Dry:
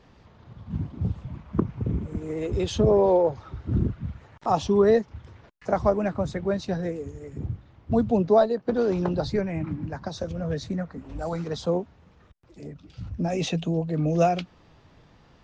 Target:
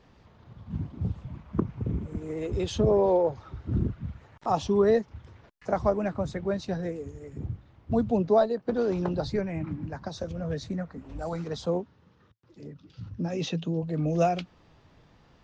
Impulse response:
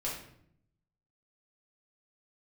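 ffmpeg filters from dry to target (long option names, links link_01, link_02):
-filter_complex "[0:a]asettb=1/sr,asplit=3[link_01][link_02][link_03];[link_01]atrim=end=11.814[link_04];[link_02]atrim=start=11.81:end=13.83,asetpts=PTS-STARTPTS,afade=type=in:duration=0.004:curve=qsin,afade=type=out:start_time=2.016:duration=0.004:curve=qsin,highpass=110,equalizer=frequency=110:width_type=q:width=4:gain=5,equalizer=frequency=690:width_type=q:width=4:gain=-9,equalizer=frequency=2300:width_type=q:width=4:gain=-5,lowpass=frequency=6200:width=0.5412,lowpass=frequency=6200:width=1.3066[link_05];[link_03]atrim=start=13.826[link_06];[link_04][link_05]acrossfade=duration=0.004:curve1=hsin:curve2=qsin[link_07];[link_07][link_06]acrossfade=duration=0.004:curve1=qsin:curve2=hsin,volume=-3dB"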